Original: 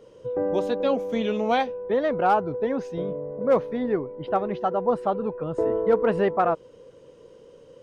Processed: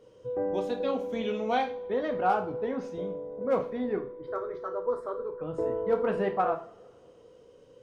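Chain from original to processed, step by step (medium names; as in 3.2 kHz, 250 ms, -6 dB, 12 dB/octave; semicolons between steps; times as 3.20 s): 3.98–5.41 s: static phaser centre 750 Hz, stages 6; two-slope reverb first 0.39 s, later 2.2 s, from -26 dB, DRR 3.5 dB; trim -7 dB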